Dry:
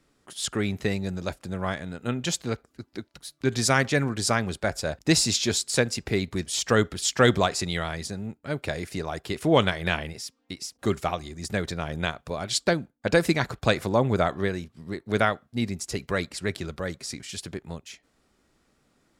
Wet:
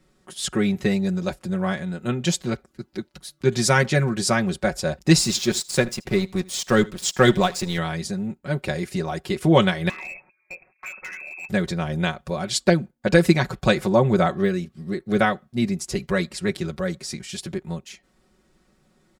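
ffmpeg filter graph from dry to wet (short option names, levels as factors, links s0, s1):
-filter_complex "[0:a]asettb=1/sr,asplit=3[s0][s1][s2];[s0]atrim=end=5.184[s3];[s1]atrim=start=5.18:end=7.78,asetpts=PTS-STARTPTS,afade=t=in:d=0.004:c=qsin,afade=t=out:st=2.596:d=0.004:c=qsin,aeval=exprs='sgn(val(0))*max(abs(val(0))-0.0141,0)':c=same,aecho=1:1:79:0.075,atrim=end_sample=114660[s4];[s2]atrim=start=7.776[s5];[s3][s4]acrossfade=d=0.004:c1=hsin:c2=qsin[s6];[s6][s5]acrossfade=d=0.004:c1=qsin:c2=hsin,asettb=1/sr,asplit=3[s7][s8][s9];[s7]atrim=end=9.894[s10];[s8]atrim=start=9.89:end=11.49,asetpts=PTS-STARTPTS,afade=t=in:d=0.004:c=qsin,afade=t=out:st=1.596:d=0.004:c=qsin,acompressor=threshold=0.0355:ratio=10:attack=3.2:release=140:knee=1:detection=peak,lowpass=f=2300:t=q:w=0.5098,lowpass=f=2300:t=q:w=0.6013,lowpass=f=2300:t=q:w=0.9,lowpass=f=2300:t=q:w=2.563,afreqshift=-2700,volume=42.2,asoftclip=hard,volume=0.0237[s11];[s9]atrim=start=11.486[s12];[s10][s11]acrossfade=d=0.004:c1=hsin:c2=qsin[s13];[s13][s12]acrossfade=d=0.004:c1=qsin:c2=hsin,asettb=1/sr,asplit=3[s14][s15][s16];[s14]atrim=end=14.344[s17];[s15]atrim=start=14.34:end=15.2,asetpts=PTS-STARTPTS,afade=t=in:d=0.004:c=qsin,afade=t=out:st=0.856:d=0.004:c=qsin,bandreject=f=950:w=5.5,deesser=0.95[s18];[s16]atrim=start=15.196[s19];[s17][s18]acrossfade=d=0.004:c1=hsin:c2=qsin[s20];[s20][s19]acrossfade=d=0.004:c1=qsin:c2=hsin,lowshelf=f=420:g=5,aecho=1:1:5.4:0.77"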